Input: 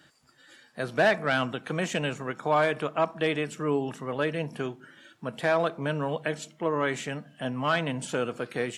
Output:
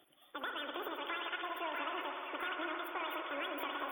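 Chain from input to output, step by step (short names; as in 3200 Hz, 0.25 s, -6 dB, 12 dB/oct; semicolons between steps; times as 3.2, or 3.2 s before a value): median filter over 3 samples; compressor, threshold -33 dBFS, peak gain reduction 14 dB; FFT band-reject 1600–4700 Hz; wide varispeed 2.24×; delay with a stepping band-pass 0.65 s, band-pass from 2600 Hz, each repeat -0.7 oct, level -1.5 dB; on a send at -2 dB: reverb RT60 3.6 s, pre-delay 58 ms; on the sum: gain -5 dB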